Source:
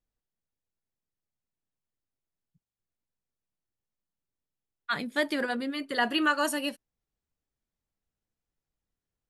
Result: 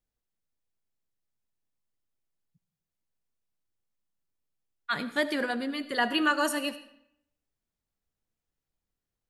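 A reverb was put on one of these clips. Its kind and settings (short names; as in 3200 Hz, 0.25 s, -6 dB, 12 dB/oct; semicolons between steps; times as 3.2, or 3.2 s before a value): digital reverb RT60 0.75 s, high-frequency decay 0.8×, pre-delay 35 ms, DRR 13 dB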